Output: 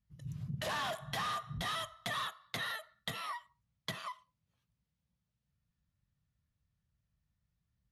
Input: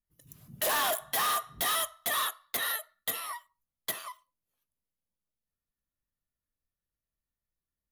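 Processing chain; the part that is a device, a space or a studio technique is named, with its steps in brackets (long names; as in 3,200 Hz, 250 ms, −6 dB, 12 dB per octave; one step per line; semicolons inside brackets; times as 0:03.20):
jukebox (low-pass filter 5,100 Hz 12 dB per octave; low shelf with overshoot 220 Hz +13 dB, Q 1.5; downward compressor 3 to 1, threshold −42 dBFS, peak gain reduction 11 dB)
high-pass filter 64 Hz
level +3.5 dB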